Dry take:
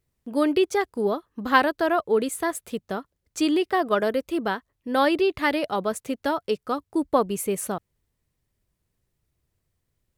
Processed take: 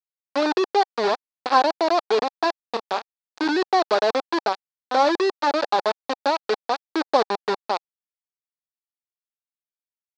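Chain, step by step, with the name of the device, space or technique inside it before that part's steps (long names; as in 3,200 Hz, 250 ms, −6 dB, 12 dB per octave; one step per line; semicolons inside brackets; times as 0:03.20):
treble cut that deepens with the level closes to 980 Hz, closed at −21 dBFS
hand-held game console (bit reduction 4 bits; loudspeaker in its box 410–4,600 Hz, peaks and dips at 810 Hz +6 dB, 2,100 Hz −7 dB, 3,000 Hz −8 dB, 4,400 Hz +5 dB)
0:02.69–0:03.47: double-tracking delay 28 ms −8 dB
level +3 dB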